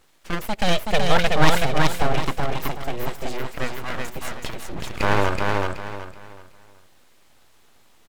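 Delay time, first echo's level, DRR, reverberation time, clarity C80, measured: 376 ms, −3.0 dB, no reverb audible, no reverb audible, no reverb audible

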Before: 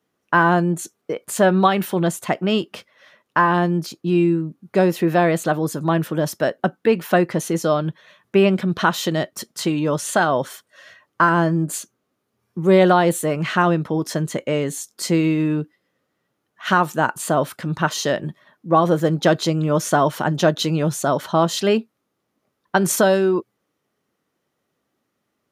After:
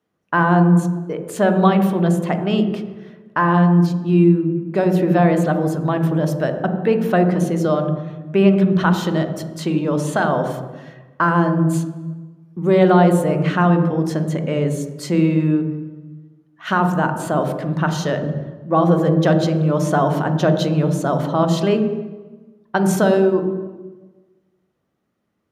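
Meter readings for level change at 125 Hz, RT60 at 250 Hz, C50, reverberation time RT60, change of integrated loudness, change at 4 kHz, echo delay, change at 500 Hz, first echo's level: +5.5 dB, 1.4 s, 8.0 dB, 1.3 s, +1.5 dB, −4.5 dB, no echo audible, +1.0 dB, no echo audible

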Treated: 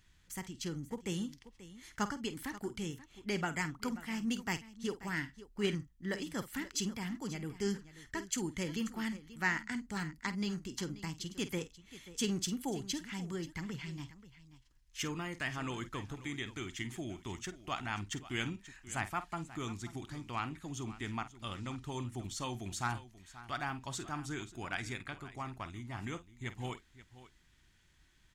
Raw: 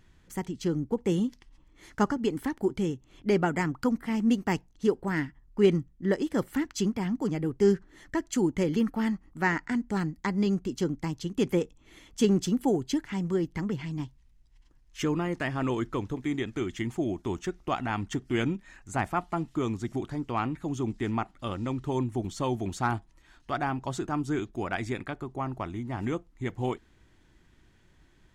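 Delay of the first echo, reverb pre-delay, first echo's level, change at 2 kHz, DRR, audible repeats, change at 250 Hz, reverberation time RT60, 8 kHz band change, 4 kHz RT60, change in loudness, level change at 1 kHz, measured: 49 ms, no reverb audible, −13.5 dB, −3.5 dB, no reverb audible, 2, −11.5 dB, no reverb audible, +0.5 dB, no reverb audible, −9.5 dB, −8.5 dB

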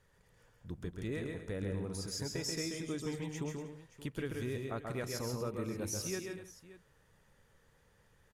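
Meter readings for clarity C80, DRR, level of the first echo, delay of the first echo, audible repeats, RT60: no reverb audible, no reverb audible, −4.0 dB, 134 ms, 5, no reverb audible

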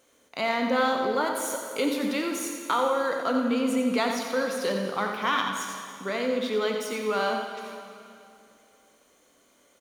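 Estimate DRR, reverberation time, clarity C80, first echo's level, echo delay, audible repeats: 2.0 dB, 2.6 s, 3.5 dB, −8.0 dB, 88 ms, 1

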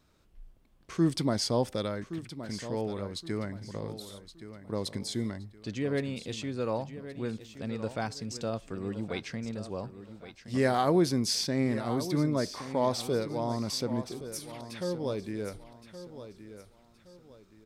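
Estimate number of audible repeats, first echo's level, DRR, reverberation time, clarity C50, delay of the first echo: 3, −12.5 dB, no reverb audible, no reverb audible, no reverb audible, 1,120 ms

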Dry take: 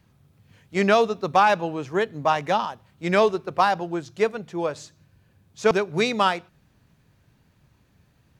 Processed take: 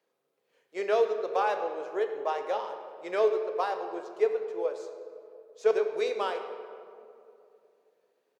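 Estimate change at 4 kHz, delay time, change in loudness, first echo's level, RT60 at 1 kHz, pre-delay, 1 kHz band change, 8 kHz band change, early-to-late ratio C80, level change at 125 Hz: −13.0 dB, 103 ms, −7.0 dB, −17.0 dB, 2.3 s, 6 ms, −10.0 dB, below −10 dB, 8.5 dB, below −30 dB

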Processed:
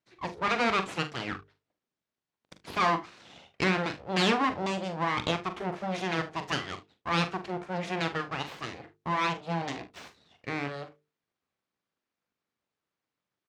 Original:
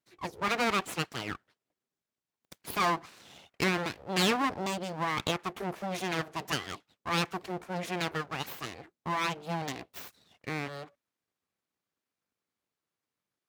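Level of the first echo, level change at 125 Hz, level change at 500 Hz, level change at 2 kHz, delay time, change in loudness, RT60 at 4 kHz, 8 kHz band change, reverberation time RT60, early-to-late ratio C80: −10.5 dB, +2.5 dB, +2.5 dB, +2.0 dB, 42 ms, +2.0 dB, no reverb audible, −4.5 dB, no reverb audible, no reverb audible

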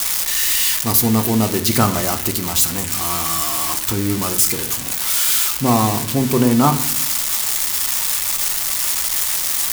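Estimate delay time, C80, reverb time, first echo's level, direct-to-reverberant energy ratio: no echo audible, 17.0 dB, 0.65 s, no echo audible, 6.0 dB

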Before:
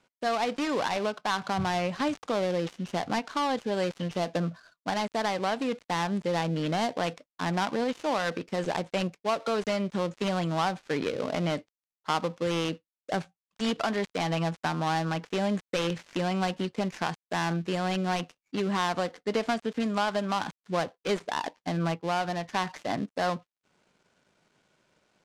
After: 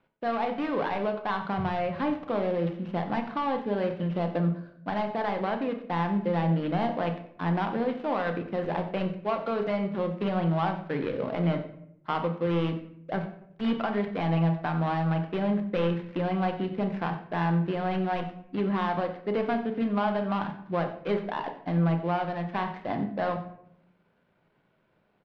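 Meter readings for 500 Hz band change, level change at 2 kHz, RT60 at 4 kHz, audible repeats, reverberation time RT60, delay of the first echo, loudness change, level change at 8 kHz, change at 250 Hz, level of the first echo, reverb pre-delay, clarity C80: +0.5 dB, −2.5 dB, 0.45 s, 1, 0.70 s, 91 ms, +1.0 dB, below −25 dB, +2.5 dB, −16.0 dB, 6 ms, 12.0 dB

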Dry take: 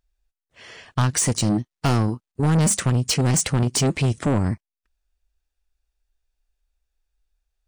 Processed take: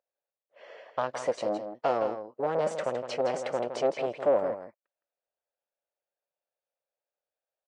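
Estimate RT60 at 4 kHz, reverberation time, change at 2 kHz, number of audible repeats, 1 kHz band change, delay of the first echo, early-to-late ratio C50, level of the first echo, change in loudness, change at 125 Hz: no reverb audible, no reverb audible, −9.5 dB, 1, −2.5 dB, 164 ms, no reverb audible, −9.0 dB, −9.0 dB, −29.0 dB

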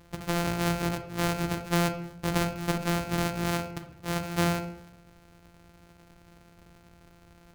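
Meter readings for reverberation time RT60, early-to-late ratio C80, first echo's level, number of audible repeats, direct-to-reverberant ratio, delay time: 0.70 s, 12.0 dB, no echo audible, no echo audible, 7.0 dB, no echo audible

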